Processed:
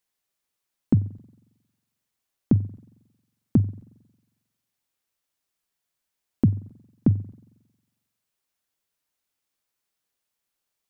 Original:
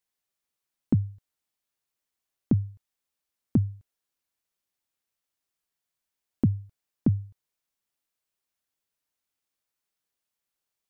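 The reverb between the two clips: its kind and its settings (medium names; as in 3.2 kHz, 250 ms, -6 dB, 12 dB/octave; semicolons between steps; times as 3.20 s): spring tank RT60 1.1 s, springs 45 ms, DRR 19 dB; trim +3.5 dB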